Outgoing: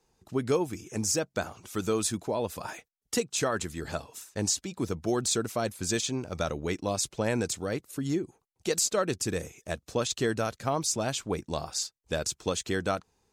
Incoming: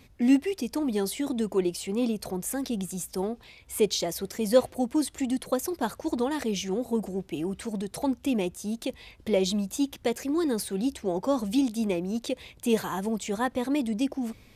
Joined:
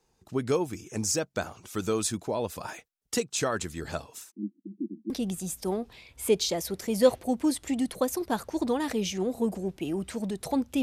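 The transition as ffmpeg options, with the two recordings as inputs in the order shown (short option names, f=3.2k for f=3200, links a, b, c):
-filter_complex "[0:a]asplit=3[a][b][c];[a]afade=t=out:st=4.3:d=0.02[d];[b]asuperpass=centerf=260:order=12:qfactor=1.7,afade=t=in:st=4.3:d=0.02,afade=t=out:st=5.1:d=0.02[e];[c]afade=t=in:st=5.1:d=0.02[f];[d][e][f]amix=inputs=3:normalize=0,apad=whole_dur=10.82,atrim=end=10.82,atrim=end=5.102[g];[1:a]atrim=start=2.608:end=8.33[h];[g][h]acrossfade=d=0.004:c1=hsin:c2=hsin"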